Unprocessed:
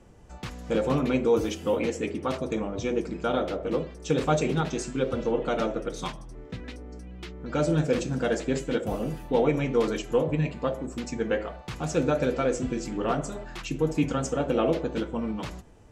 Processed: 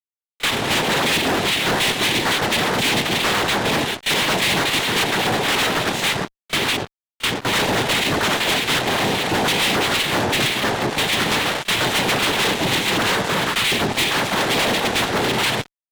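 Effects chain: spectral peaks clipped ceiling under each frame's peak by 18 dB; gate with hold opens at -30 dBFS; compression 6:1, threshold -31 dBFS, peak gain reduction 13.5 dB; resonant low-pass 2.5 kHz, resonance Q 4.4; noise-vocoded speech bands 6; fuzz box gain 40 dB, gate -46 dBFS; pre-echo 33 ms -20 dB; trim -3.5 dB

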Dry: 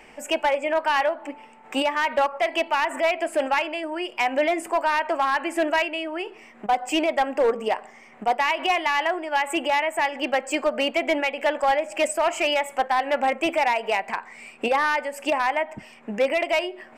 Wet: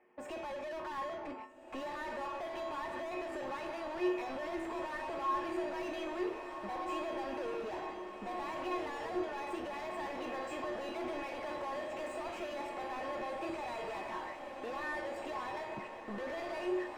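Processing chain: treble shelf 2.7 kHz -11.5 dB; gate -43 dBFS, range -20 dB; feedback comb 66 Hz, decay 0.53 s, harmonics all, mix 50%; peak limiter -25 dBFS, peak gain reduction 8 dB; flange 0.16 Hz, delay 0.5 ms, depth 5.4 ms, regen -76%; overdrive pedal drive 36 dB, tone 1.1 kHz, clips at -21 dBFS; feedback comb 360 Hz, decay 0.46 s, harmonics odd, mix 90%; on a send: echo that smears into a reverb 1632 ms, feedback 58%, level -6 dB; on the sum: tape noise reduction on one side only decoder only; trim +6 dB

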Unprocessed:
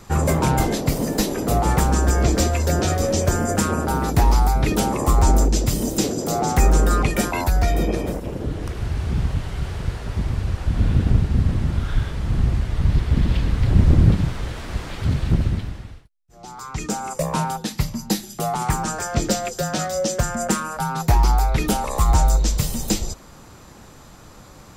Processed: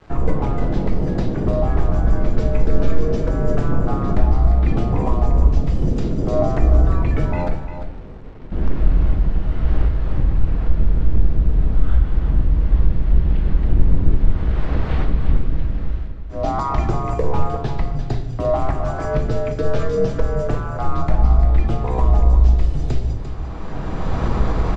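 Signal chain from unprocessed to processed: octave divider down 1 oct, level +1 dB; recorder AGC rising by 21 dB/s; 7.50–8.52 s: gate -5 dBFS, range -22 dB; in parallel at -1.5 dB: compression 6:1, threshold -24 dBFS, peak gain reduction 18 dB; on the sum: frequency shift -86 Hz; bit crusher 6-bit; tape spacing loss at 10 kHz 36 dB; on a send: delay 347 ms -10 dB; on the sum: simulated room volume 270 m³, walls mixed, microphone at 0.58 m; trim -5.5 dB

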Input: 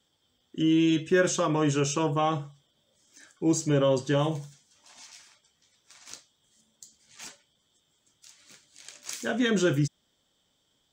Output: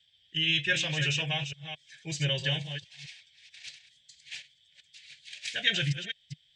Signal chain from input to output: chunks repeated in reverse 364 ms, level -8.5 dB; FFT filter 150 Hz 0 dB, 240 Hz -22 dB, 730 Hz -7 dB, 1.2 kHz -21 dB, 1.7 kHz +7 dB, 2.5 kHz +13 dB, 3.8 kHz +11 dB, 6.5 kHz -4 dB; resampled via 22.05 kHz; time stretch by phase-locked vocoder 0.6×; trim -1.5 dB

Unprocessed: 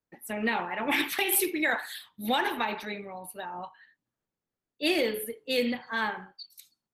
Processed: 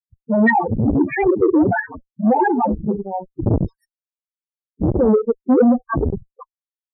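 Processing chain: resampled via 16 kHz; decimation with a swept rate 32×, swing 160% 1.5 Hz; 3.44–5.14 s: tone controls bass +12 dB, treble +11 dB; fuzz box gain 35 dB, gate -39 dBFS; loudest bins only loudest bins 4; transformer saturation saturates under 340 Hz; trim +6.5 dB

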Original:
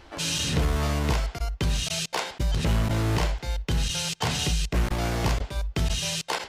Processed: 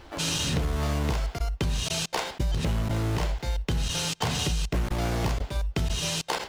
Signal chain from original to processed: in parallel at -10.5 dB: sample-and-hold 16×; on the sum: compression, threshold -23 dBFS, peak gain reduction 6.5 dB

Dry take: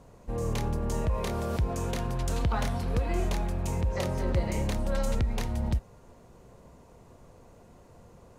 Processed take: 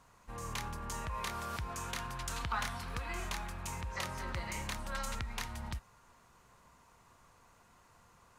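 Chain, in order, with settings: resonant low shelf 790 Hz -12 dB, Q 1.5; trim -1.5 dB

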